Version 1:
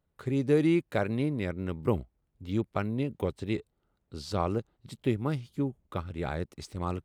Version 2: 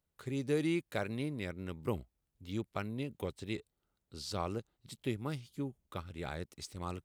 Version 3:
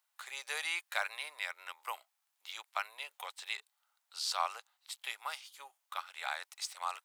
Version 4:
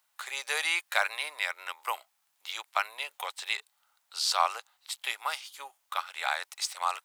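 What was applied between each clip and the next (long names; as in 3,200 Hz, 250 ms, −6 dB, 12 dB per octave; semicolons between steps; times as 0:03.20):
high-shelf EQ 2,500 Hz +10.5 dB; level −8.5 dB
Butterworth high-pass 790 Hz 36 dB per octave; harmonic and percussive parts rebalanced harmonic +4 dB; level +6.5 dB
low-shelf EQ 350 Hz +4.5 dB; level +7.5 dB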